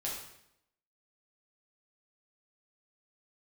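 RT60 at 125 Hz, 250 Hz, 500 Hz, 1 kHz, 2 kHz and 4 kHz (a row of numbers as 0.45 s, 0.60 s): 0.80 s, 0.85 s, 0.80 s, 0.75 s, 0.70 s, 0.70 s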